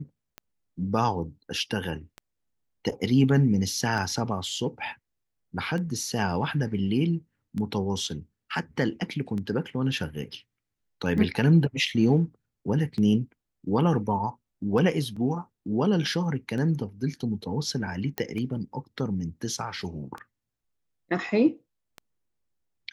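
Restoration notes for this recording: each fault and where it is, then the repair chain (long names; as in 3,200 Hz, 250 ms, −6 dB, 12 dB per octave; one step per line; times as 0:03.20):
scratch tick 33 1/3 rpm −23 dBFS
0:15.16–0:15.17: drop-out 5.1 ms
0:18.18: click −13 dBFS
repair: click removal
repair the gap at 0:15.16, 5.1 ms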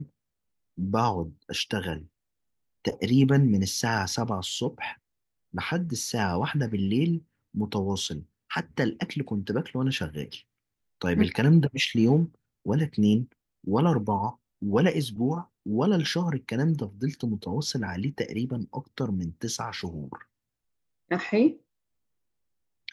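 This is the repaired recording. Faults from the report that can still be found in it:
none of them is left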